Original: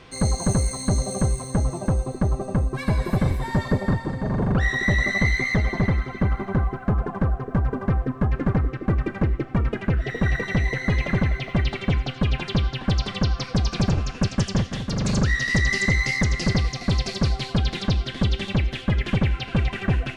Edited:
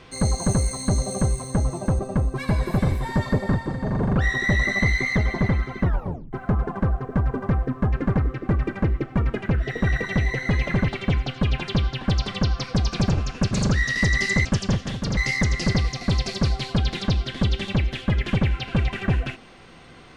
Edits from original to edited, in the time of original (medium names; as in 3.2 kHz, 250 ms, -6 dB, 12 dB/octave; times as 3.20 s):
1.99–2.38 s: delete
6.22 s: tape stop 0.50 s
11.27–11.68 s: delete
14.31–15.03 s: move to 15.97 s